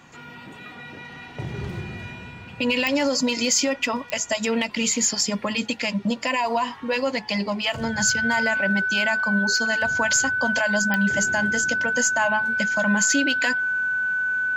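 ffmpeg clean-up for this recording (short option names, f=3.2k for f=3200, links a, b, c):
-af "adeclick=t=4,bandreject=f=1.5k:w=30"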